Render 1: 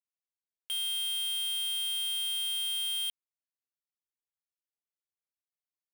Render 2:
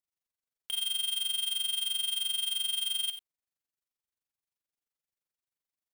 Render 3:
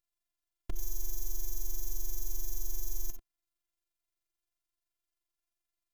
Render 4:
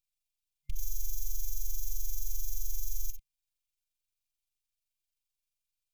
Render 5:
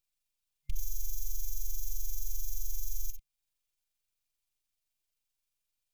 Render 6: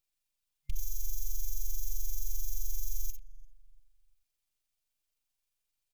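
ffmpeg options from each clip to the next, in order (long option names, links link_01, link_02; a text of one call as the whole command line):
ffmpeg -i in.wav -filter_complex "[0:a]lowshelf=frequency=230:gain=3.5,tremolo=f=23:d=0.919,asplit=2[link_01][link_02];[link_02]aecho=0:1:59|65|91:0.133|0.158|0.211[link_03];[link_01][link_03]amix=inputs=2:normalize=0,volume=4dB" out.wav
ffmpeg -i in.wav -af "aeval=exprs='abs(val(0))':channel_layout=same,equalizer=frequency=140:width_type=o:width=0.77:gain=13,afftfilt=real='hypot(re,im)*cos(PI*b)':imag='0':win_size=512:overlap=0.75,volume=5.5dB" out.wav
ffmpeg -i in.wav -af "afftfilt=real='re*(1-between(b*sr/4096,140,2100))':imag='im*(1-between(b*sr/4096,140,2100))':win_size=4096:overlap=0.75,volume=1dB" out.wav
ffmpeg -i in.wav -af "alimiter=limit=-22dB:level=0:latency=1:release=338,volume=2.5dB" out.wav
ffmpeg -i in.wav -filter_complex "[0:a]asplit=2[link_01][link_02];[link_02]adelay=346,lowpass=frequency=1100:poles=1,volume=-17.5dB,asplit=2[link_03][link_04];[link_04]adelay=346,lowpass=frequency=1100:poles=1,volume=0.36,asplit=2[link_05][link_06];[link_06]adelay=346,lowpass=frequency=1100:poles=1,volume=0.36[link_07];[link_01][link_03][link_05][link_07]amix=inputs=4:normalize=0" out.wav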